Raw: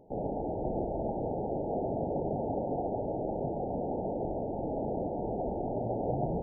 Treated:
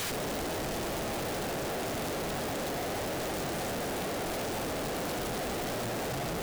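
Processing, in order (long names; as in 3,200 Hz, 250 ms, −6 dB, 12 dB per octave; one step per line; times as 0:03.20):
background noise white −44 dBFS
comparator with hysteresis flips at −45.5 dBFS
level −1 dB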